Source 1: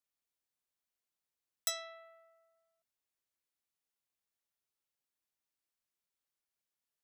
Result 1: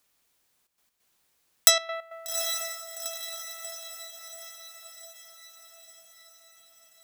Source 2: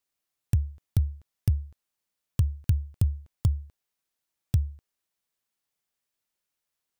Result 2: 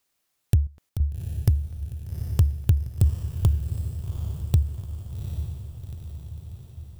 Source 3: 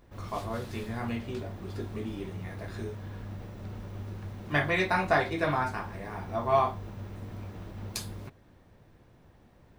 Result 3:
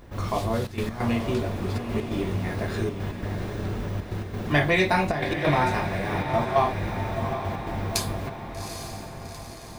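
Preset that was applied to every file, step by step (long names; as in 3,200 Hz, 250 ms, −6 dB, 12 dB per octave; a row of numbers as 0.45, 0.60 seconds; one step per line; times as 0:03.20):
dynamic equaliser 1,300 Hz, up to −7 dB, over −45 dBFS, Q 1.8
in parallel at 0 dB: downward compressor, threshold −34 dBFS
on the sum: gate pattern "xxxxxx.x.x" 135 BPM −12 dB
soft clipping −10.5 dBFS
on a send: feedback delay with all-pass diffusion 798 ms, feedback 58%, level −7.5 dB
on the sum: loudness normalisation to −27 LKFS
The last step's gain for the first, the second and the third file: +14.0, +3.5, +5.0 decibels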